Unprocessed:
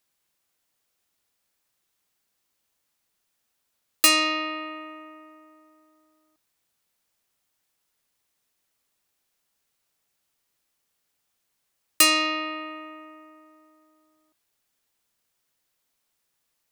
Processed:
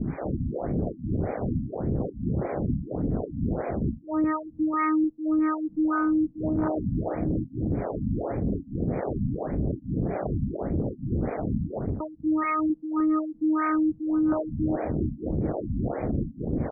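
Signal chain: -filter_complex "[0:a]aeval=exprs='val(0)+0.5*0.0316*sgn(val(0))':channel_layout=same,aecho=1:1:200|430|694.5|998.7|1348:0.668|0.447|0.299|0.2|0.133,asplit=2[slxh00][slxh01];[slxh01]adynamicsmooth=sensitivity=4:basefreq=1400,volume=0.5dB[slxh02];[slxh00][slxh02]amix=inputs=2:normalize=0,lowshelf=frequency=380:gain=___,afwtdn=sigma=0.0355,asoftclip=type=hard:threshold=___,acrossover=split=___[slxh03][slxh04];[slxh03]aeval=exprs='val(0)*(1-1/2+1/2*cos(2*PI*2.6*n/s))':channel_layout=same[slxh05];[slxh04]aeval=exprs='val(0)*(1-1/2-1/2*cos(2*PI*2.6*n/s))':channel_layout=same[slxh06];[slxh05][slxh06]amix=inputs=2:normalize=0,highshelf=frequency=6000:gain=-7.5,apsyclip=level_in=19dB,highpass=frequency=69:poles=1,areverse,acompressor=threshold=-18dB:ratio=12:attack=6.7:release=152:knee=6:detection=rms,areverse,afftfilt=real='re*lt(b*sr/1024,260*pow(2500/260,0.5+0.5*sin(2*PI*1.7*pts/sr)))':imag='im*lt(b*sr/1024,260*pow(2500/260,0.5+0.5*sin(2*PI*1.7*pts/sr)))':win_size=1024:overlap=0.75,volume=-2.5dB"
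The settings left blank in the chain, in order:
12, -16dB, 430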